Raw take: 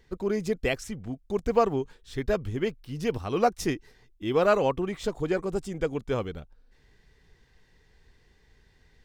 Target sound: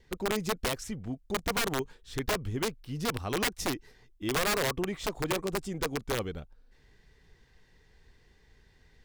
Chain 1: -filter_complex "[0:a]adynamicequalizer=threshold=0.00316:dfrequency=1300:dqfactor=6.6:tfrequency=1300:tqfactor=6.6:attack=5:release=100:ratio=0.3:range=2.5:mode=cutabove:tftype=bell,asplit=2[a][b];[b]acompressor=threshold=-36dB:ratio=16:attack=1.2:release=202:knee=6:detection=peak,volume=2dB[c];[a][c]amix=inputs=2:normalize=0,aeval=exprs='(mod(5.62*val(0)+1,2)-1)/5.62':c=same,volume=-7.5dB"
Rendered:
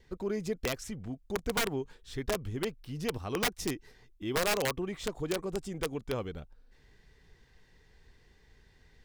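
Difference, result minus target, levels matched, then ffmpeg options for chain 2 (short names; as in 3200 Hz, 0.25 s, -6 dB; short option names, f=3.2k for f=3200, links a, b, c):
compressor: peak gain reduction +10 dB
-filter_complex "[0:a]adynamicequalizer=threshold=0.00316:dfrequency=1300:dqfactor=6.6:tfrequency=1300:tqfactor=6.6:attack=5:release=100:ratio=0.3:range=2.5:mode=cutabove:tftype=bell,asplit=2[a][b];[b]acompressor=threshold=-25.5dB:ratio=16:attack=1.2:release=202:knee=6:detection=peak,volume=2dB[c];[a][c]amix=inputs=2:normalize=0,aeval=exprs='(mod(5.62*val(0)+1,2)-1)/5.62':c=same,volume=-7.5dB"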